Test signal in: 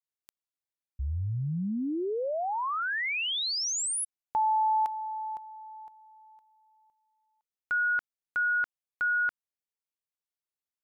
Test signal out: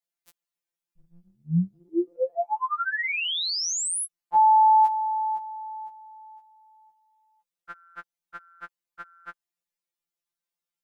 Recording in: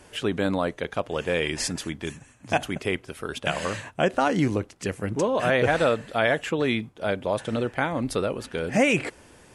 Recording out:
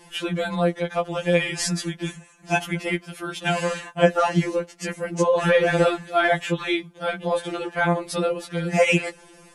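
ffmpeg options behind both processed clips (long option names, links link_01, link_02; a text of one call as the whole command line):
ffmpeg -i in.wav -af "acontrast=26,afftfilt=real='re*2.83*eq(mod(b,8),0)':imag='im*2.83*eq(mod(b,8),0)':win_size=2048:overlap=0.75" out.wav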